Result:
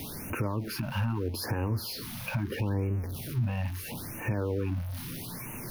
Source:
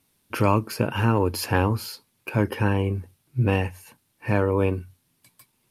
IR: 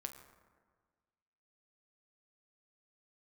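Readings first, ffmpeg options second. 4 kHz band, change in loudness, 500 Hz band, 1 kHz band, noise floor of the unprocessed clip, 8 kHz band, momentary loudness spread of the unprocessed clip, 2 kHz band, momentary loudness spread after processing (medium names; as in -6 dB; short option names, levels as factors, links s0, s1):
-3.5 dB, -8.5 dB, -11.0 dB, -12.5 dB, -70 dBFS, -2.0 dB, 12 LU, -8.5 dB, 7 LU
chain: -filter_complex "[0:a]aeval=exprs='val(0)+0.5*0.0376*sgn(val(0))':c=same,equalizer=f=7700:w=3.2:g=-14.5,acrossover=split=440[s0][s1];[s0]acontrast=31[s2];[s2][s1]amix=inputs=2:normalize=0,alimiter=limit=0.158:level=0:latency=1:release=217,areverse,acompressor=mode=upward:threshold=0.00501:ratio=2.5,areverse,afftfilt=real='re*(1-between(b*sr/1024,340*pow(4200/340,0.5+0.5*sin(2*PI*0.77*pts/sr))/1.41,340*pow(4200/340,0.5+0.5*sin(2*PI*0.77*pts/sr))*1.41))':imag='im*(1-between(b*sr/1024,340*pow(4200/340,0.5+0.5*sin(2*PI*0.77*pts/sr))/1.41,340*pow(4200/340,0.5+0.5*sin(2*PI*0.77*pts/sr))*1.41))':win_size=1024:overlap=0.75,volume=0.531"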